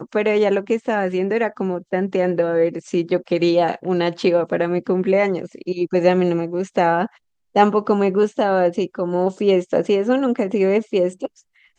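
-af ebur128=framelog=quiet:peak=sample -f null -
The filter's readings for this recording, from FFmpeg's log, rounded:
Integrated loudness:
  I:         -19.5 LUFS
  Threshold: -29.6 LUFS
Loudness range:
  LRA:         1.6 LU
  Threshold: -39.5 LUFS
  LRA low:   -20.3 LUFS
  LRA high:  -18.7 LUFS
Sample peak:
  Peak:       -1.8 dBFS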